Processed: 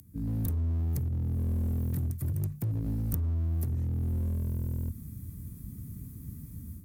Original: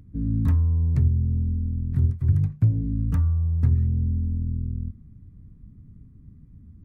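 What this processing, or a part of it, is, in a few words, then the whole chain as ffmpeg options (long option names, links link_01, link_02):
FM broadcast chain: -filter_complex "[0:a]asettb=1/sr,asplit=3[link_01][link_02][link_03];[link_01]atrim=end=1.354[link_04];[link_02]atrim=start=1.35:end=2.07,asetpts=PTS-STARTPTS,afade=type=in:duration=0.004:curve=qsin,afade=type=out:start_time=0.716:duration=0.004:curve=qsin,highpass=frequency=58:poles=1[link_05];[link_03]atrim=start=2.066[link_06];[link_04][link_05]acrossfade=duration=0.004:curve1=hsin:curve2=qsin[link_07];[link_07][link_06]acrossfade=duration=0.004:curve1=qsin:curve2=hsin,highpass=56,dynaudnorm=framelen=260:gausssize=3:maxgain=13dB,acrossover=split=130|860[link_08][link_09][link_10];[link_08]acompressor=threshold=-21dB:ratio=4[link_11];[link_09]acompressor=threshold=-27dB:ratio=4[link_12];[link_10]acompressor=threshold=-60dB:ratio=4[link_13];[link_11][link_12][link_13]amix=inputs=3:normalize=0,aemphasis=mode=production:type=75fm,alimiter=limit=-17dB:level=0:latency=1:release=104,asoftclip=type=hard:threshold=-20.5dB,lowpass=frequency=15000:width=0.5412,lowpass=frequency=15000:width=1.3066,aemphasis=mode=production:type=75fm,volume=-5dB"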